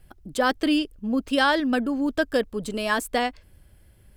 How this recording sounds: noise floor -55 dBFS; spectral tilt -2.0 dB/octave

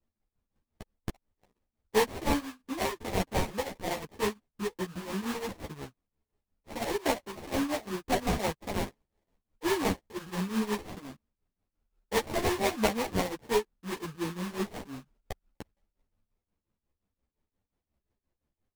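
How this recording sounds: aliases and images of a low sample rate 1.4 kHz, jitter 20%; tremolo triangle 5.7 Hz, depth 90%; a shimmering, thickened sound

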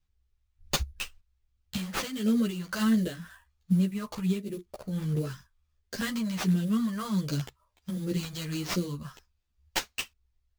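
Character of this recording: phasing stages 2, 1.4 Hz, lowest notch 340–1000 Hz; aliases and images of a low sample rate 11 kHz, jitter 20%; a shimmering, thickened sound

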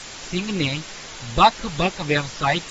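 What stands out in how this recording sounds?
phasing stages 8, 3.9 Hz, lowest notch 370–1200 Hz; a quantiser's noise floor 6-bit, dither triangular; AAC

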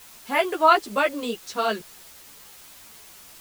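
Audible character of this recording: a quantiser's noise floor 8-bit, dither triangular; a shimmering, thickened sound

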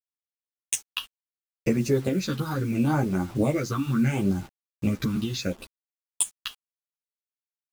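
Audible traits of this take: phasing stages 6, 0.72 Hz, lowest notch 560–3600 Hz; a quantiser's noise floor 8-bit, dither none; a shimmering, thickened sound

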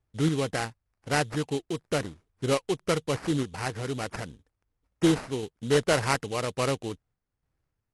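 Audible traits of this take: aliases and images of a low sample rate 3.5 kHz, jitter 20%; random-step tremolo; AC-3

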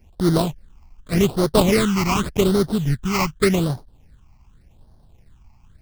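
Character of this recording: aliases and images of a low sample rate 1.7 kHz, jitter 20%; phasing stages 8, 0.86 Hz, lowest notch 470–2500 Hz

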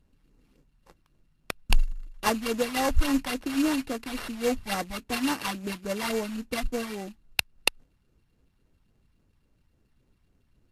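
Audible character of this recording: a buzz of ramps at a fixed pitch in blocks of 16 samples; phasing stages 12, 3.6 Hz, lowest notch 440–4700 Hz; aliases and images of a low sample rate 7 kHz, jitter 20%; Vorbis

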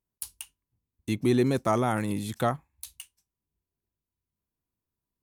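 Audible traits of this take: noise floor -89 dBFS; spectral tilt -6.0 dB/octave

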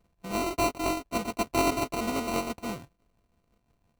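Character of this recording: a buzz of ramps at a fixed pitch in blocks of 64 samples; tremolo triangle 6 Hz, depth 55%; aliases and images of a low sample rate 1.7 kHz, jitter 0%

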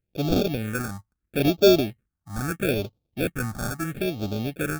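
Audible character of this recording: aliases and images of a low sample rate 1 kHz, jitter 0%; phasing stages 4, 0.76 Hz, lowest notch 440–1800 Hz

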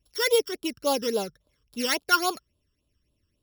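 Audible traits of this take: a buzz of ramps at a fixed pitch in blocks of 8 samples; phasing stages 12, 3.6 Hz, lowest notch 690–2000 Hz

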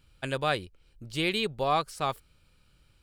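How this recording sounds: noise floor -65 dBFS; spectral tilt -2.5 dB/octave

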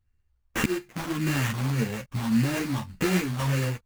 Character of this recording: a buzz of ramps at a fixed pitch in blocks of 16 samples; phasing stages 4, 1.7 Hz, lowest notch 410–1300 Hz; aliases and images of a low sample rate 4.5 kHz, jitter 20%; a shimmering, thickened sound

